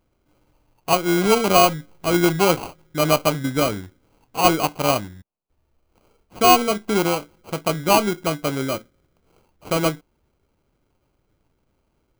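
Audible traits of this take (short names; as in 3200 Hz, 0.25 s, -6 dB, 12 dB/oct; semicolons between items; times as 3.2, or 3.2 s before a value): aliases and images of a low sample rate 1800 Hz, jitter 0%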